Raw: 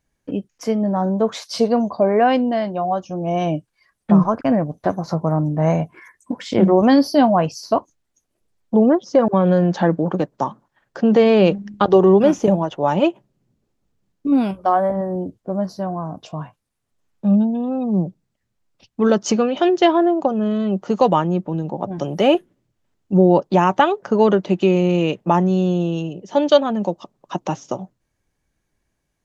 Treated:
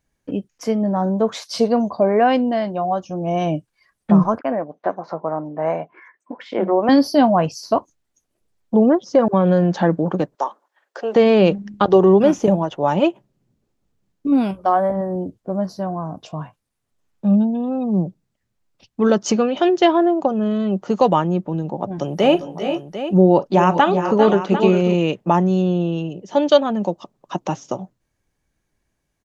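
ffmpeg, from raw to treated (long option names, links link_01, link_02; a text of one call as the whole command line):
ffmpeg -i in.wav -filter_complex "[0:a]asettb=1/sr,asplit=3[link_01][link_02][link_03];[link_01]atrim=end=4.394[link_04];[link_02]atrim=start=4.39:end=6.89,asetpts=PTS-STARTPTS,afade=type=in:duration=0.004:curve=qsin,afade=type=out:start_time=2.496:duration=0.004:curve=qsin,highpass=400,lowpass=2300[link_05];[link_03]atrim=start=6.886[link_06];[link_04][link_05]acrossfade=duration=0.004:curve1=hsin:curve2=qsin[link_07];[link_07][link_06]acrossfade=duration=0.004:curve1=qsin:curve2=hsin,asettb=1/sr,asplit=3[link_08][link_09][link_10];[link_08]atrim=end=10.354[link_11];[link_09]atrim=start=10.35:end=11.16,asetpts=PTS-STARTPTS,afade=type=in:duration=0.004:curve=qsin,afade=type=out:start_time=0.806:duration=0.004:curve=qsin,highpass=frequency=410:width=0.5412,highpass=frequency=410:width=1.3066[link_12];[link_10]atrim=start=11.156[link_13];[link_11][link_12]acrossfade=duration=0.004:curve1=hsin:curve2=qsin[link_14];[link_14][link_13]acrossfade=duration=0.004:curve1=qsin:curve2=hsin,asplit=3[link_15][link_16][link_17];[link_15]afade=type=out:start_time=22.21:duration=0.02[link_18];[link_16]aecho=1:1:43|396|414|432|747:0.15|0.266|0.299|0.119|0.266,afade=type=in:start_time=22.21:duration=0.02,afade=type=out:start_time=24.93:duration=0.02[link_19];[link_17]afade=type=in:start_time=24.93:duration=0.02[link_20];[link_18][link_19][link_20]amix=inputs=3:normalize=0,asettb=1/sr,asplit=3[link_21][link_22][link_23];[link_21]atrim=end=25.624[link_24];[link_22]atrim=start=25.62:end=26.1,asetpts=PTS-STARTPTS,afade=type=in:duration=0.004:curve=qsin,afade=type=out:start_time=0.476:duration=0.004:curve=qsin,lowpass=4200[link_25];[link_23]atrim=start=26.096[link_26];[link_24][link_25]acrossfade=duration=0.004:curve1=hsin:curve2=qsin[link_27];[link_27][link_26]acrossfade=duration=0.004:curve1=qsin:curve2=hsin" out.wav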